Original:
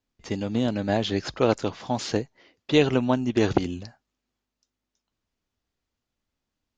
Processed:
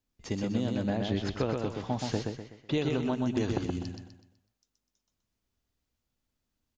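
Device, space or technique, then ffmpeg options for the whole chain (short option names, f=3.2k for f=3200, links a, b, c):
ASMR close-microphone chain: -filter_complex "[0:a]asettb=1/sr,asplit=3[a][b][c];[a]atrim=end=0.834[d];[b]atrim=start=0.83:end=2.78,asetpts=PTS-STARTPTS,afade=t=in:d=0.004:c=qsin,afade=t=out:st=1.946:d=0.004:c=qsin,bass=f=250:g=2,treble=f=4k:g=-8[e];[c]atrim=start=2.776[f];[d][e]acrossfade=d=0.004:c1=hsin:c2=qsin[g];[g][f]acrossfade=d=0.004:c1=qsin:c2=hsin,lowshelf=f=250:g=5.5,acompressor=threshold=-21dB:ratio=6,highshelf=f=6.6k:g=8,aecho=1:1:125|250|375|500|625:0.631|0.24|0.0911|0.0346|0.0132,volume=-5dB"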